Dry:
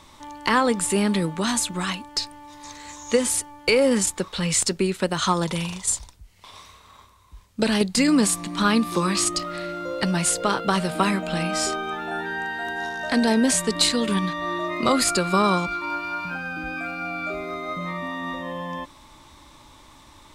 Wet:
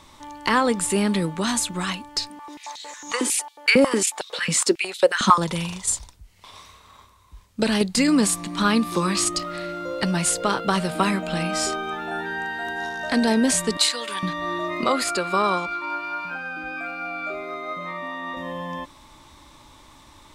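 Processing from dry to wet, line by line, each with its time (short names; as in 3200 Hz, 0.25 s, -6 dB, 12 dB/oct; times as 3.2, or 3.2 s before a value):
2.3–5.38 stepped high-pass 11 Hz 220–3700 Hz
13.77–14.23 HPF 720 Hz
14.84–18.37 tone controls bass -12 dB, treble -6 dB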